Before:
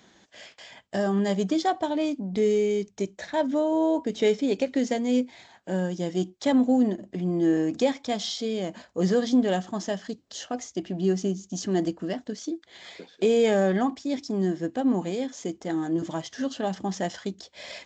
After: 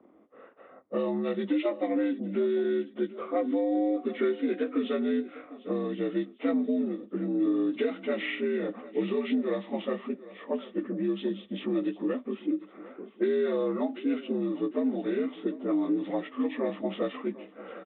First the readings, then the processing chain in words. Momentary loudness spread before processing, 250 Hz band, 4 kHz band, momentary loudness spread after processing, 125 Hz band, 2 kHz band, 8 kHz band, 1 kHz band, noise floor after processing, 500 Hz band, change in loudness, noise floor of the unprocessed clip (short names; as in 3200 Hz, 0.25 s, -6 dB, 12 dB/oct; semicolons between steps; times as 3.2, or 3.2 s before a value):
12 LU, -3.0 dB, -9.0 dB, 7 LU, -10.5 dB, -3.0 dB, n/a, -8.0 dB, -55 dBFS, -3.5 dB, -3.5 dB, -60 dBFS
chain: inharmonic rescaling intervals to 80%; low-pass opened by the level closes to 590 Hz, open at -20 dBFS; compressor, threshold -30 dBFS, peak gain reduction 12 dB; resonant low shelf 200 Hz -9.5 dB, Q 1.5; on a send: feedback echo 0.75 s, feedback 35%, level -17.5 dB; on the sum: gain +4 dB